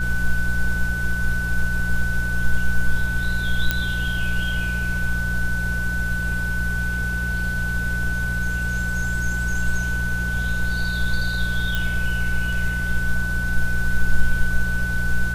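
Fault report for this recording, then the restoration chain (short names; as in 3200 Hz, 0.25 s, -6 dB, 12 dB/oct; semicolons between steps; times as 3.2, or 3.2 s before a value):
hum 60 Hz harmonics 3 -26 dBFS
tone 1500 Hz -25 dBFS
3.71 pop -5 dBFS
11.75 pop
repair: de-click; de-hum 60 Hz, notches 3; notch 1500 Hz, Q 30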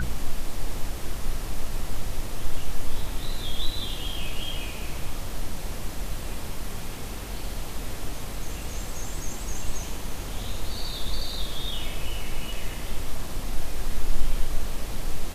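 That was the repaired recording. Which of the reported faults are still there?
none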